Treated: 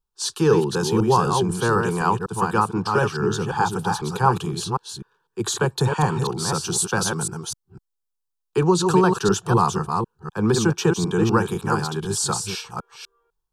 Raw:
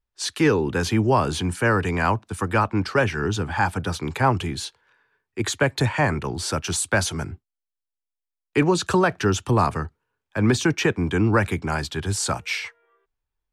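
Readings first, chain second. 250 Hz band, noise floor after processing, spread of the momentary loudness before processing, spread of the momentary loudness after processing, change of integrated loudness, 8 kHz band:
+1.0 dB, -79 dBFS, 9 LU, 10 LU, +1.0 dB, +3.5 dB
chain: reverse delay 0.251 s, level -4.5 dB; fixed phaser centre 410 Hz, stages 8; gain +3 dB

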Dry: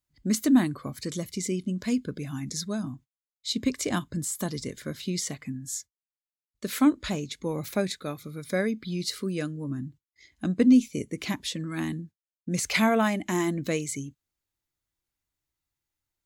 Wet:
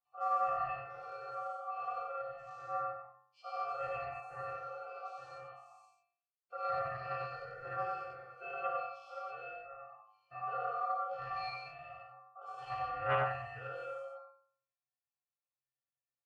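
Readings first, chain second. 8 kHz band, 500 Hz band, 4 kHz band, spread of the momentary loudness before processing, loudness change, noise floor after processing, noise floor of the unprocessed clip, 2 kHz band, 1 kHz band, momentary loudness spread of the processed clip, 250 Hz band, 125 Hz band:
under -40 dB, -9.0 dB, -21.0 dB, 14 LU, -11.5 dB, under -85 dBFS, under -85 dBFS, -10.0 dB, +1.5 dB, 16 LU, under -35 dB, -18.0 dB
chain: spectral dilation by 0.24 s; HPF 270 Hz 12 dB/oct; high shelf 4200 Hz -6.5 dB; limiter -13 dBFS, peak gain reduction 8.5 dB; octave resonator G#, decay 0.55 s; ring modulator 960 Hz; echo 94 ms -3 dB; Doppler distortion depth 0.2 ms; gain +5.5 dB

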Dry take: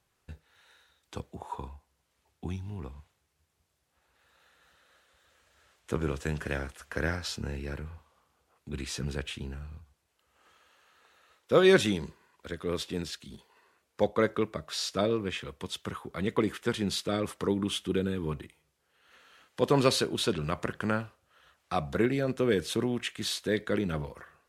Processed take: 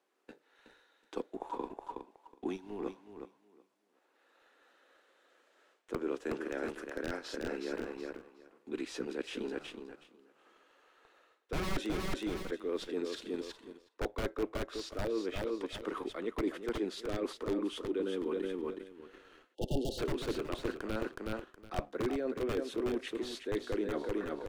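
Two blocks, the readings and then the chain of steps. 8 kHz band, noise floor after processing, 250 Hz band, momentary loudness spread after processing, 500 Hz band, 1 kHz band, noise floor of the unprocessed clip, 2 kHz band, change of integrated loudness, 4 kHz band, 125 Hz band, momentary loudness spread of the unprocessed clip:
-11.5 dB, -73 dBFS, -5.5 dB, 11 LU, -6.0 dB, -6.5 dB, -77 dBFS, -8.5 dB, -7.5 dB, -10.0 dB, -11.0 dB, 16 LU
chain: steep high-pass 290 Hz 36 dB/oct; wrapped overs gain 19.5 dB; bell 730 Hz -2.5 dB 2.3 oct; feedback echo 0.369 s, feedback 23%, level -8 dB; sample leveller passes 1; spectral delete 19.55–19.99, 880–2700 Hz; reverse; compressor 6:1, threshold -39 dBFS, peak gain reduction 16.5 dB; reverse; tilt -3.5 dB/oct; gain +2.5 dB

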